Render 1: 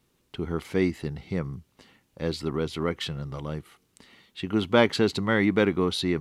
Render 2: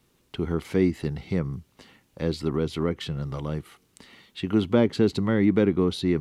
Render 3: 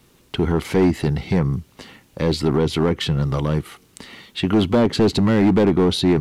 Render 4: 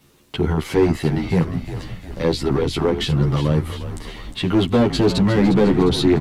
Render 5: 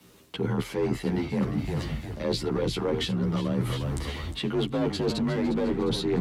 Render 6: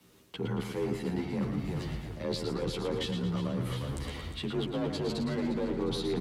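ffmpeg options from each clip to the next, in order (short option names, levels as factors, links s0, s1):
-filter_complex "[0:a]acrossover=split=480[s0][s1];[s1]acompressor=threshold=0.01:ratio=2.5[s2];[s0][s2]amix=inputs=2:normalize=0,volume=1.5"
-filter_complex "[0:a]asplit=2[s0][s1];[s1]alimiter=limit=0.106:level=0:latency=1:release=13,volume=1.41[s2];[s0][s2]amix=inputs=2:normalize=0,asoftclip=type=hard:threshold=0.2,volume=1.41"
-filter_complex "[0:a]asplit=8[s0][s1][s2][s3][s4][s5][s6][s7];[s1]adelay=355,afreqshift=-53,volume=0.299[s8];[s2]adelay=710,afreqshift=-106,volume=0.18[s9];[s3]adelay=1065,afreqshift=-159,volume=0.107[s10];[s4]adelay=1420,afreqshift=-212,volume=0.0646[s11];[s5]adelay=1775,afreqshift=-265,volume=0.0389[s12];[s6]adelay=2130,afreqshift=-318,volume=0.0232[s13];[s7]adelay=2485,afreqshift=-371,volume=0.014[s14];[s0][s8][s9][s10][s11][s12][s13][s14]amix=inputs=8:normalize=0,asplit=2[s15][s16];[s16]adelay=11.4,afreqshift=0.33[s17];[s15][s17]amix=inputs=2:normalize=1,volume=1.41"
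-af "afreqshift=36,areverse,acompressor=threshold=0.0631:ratio=6,areverse"
-af "aecho=1:1:113|226|339|452|565:0.422|0.19|0.0854|0.0384|0.0173,volume=0.501"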